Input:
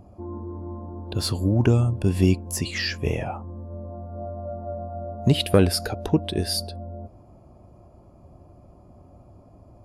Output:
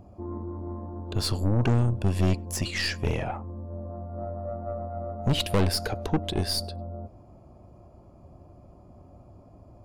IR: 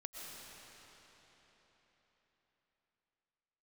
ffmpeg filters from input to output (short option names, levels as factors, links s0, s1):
-filter_complex "[0:a]equalizer=f=11000:t=o:w=0.61:g=-5,aeval=exprs='(tanh(11.2*val(0)+0.6)-tanh(0.6))/11.2':c=same,asplit=2[s0][s1];[1:a]atrim=start_sample=2205,afade=t=out:st=0.15:d=0.01,atrim=end_sample=7056[s2];[s1][s2]afir=irnorm=-1:irlink=0,volume=0.531[s3];[s0][s3]amix=inputs=2:normalize=0"